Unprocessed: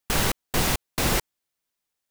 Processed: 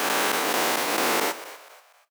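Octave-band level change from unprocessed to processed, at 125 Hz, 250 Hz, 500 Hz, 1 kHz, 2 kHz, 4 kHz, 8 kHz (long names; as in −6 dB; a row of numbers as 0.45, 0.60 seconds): −17.5, −1.0, +4.5, +6.5, +4.5, +2.0, +0.5 decibels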